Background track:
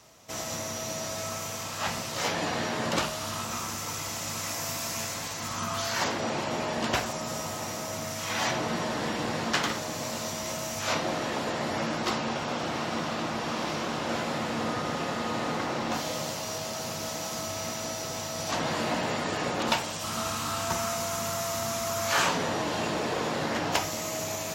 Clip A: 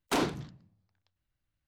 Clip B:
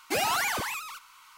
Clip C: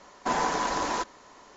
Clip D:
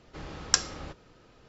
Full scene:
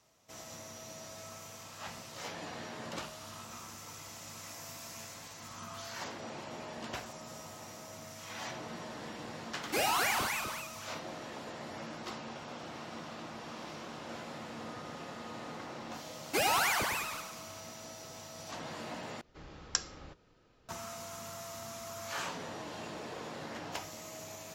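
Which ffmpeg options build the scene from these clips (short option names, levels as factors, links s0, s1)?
-filter_complex "[2:a]asplit=2[s0][s1];[0:a]volume=0.211[s2];[s0]aecho=1:1:37.9|253.6:0.501|0.501[s3];[s1]aecho=1:1:105|210|315|420|525|630:0.398|0.191|0.0917|0.044|0.0211|0.0101[s4];[s2]asplit=2[s5][s6];[s5]atrim=end=19.214[s7];[4:a]atrim=end=1.48,asetpts=PTS-STARTPTS,volume=0.355[s8];[s6]atrim=start=20.686[s9];[s3]atrim=end=1.37,asetpts=PTS-STARTPTS,volume=0.596,afade=t=in:d=0.004:c=hsin,afade=t=out:st=1.366:d=0.004:c=hsin,adelay=424242S[s10];[s4]atrim=end=1.37,asetpts=PTS-STARTPTS,volume=0.75,afade=t=in:d=0.004:c=hsin,afade=t=out:st=1.366:d=0.004:c=hsin,adelay=16230[s11];[s7][s8]acrossfade=d=0.004:c1=hsin:c2=hsin[s12];[s12][s9]acrossfade=d=0.004:c1=hsin:c2=hsin[s13];[s13][s10][s11]amix=inputs=3:normalize=0"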